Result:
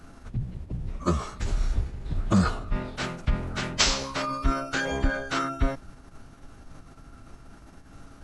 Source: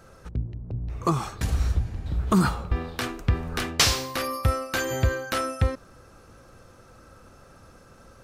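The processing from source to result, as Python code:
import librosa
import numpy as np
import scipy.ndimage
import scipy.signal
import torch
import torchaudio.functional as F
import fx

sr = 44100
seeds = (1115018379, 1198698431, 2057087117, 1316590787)

y = fx.dmg_noise_colour(x, sr, seeds[0], colour='brown', level_db=-44.0)
y = fx.pitch_keep_formants(y, sr, semitones=-11.5)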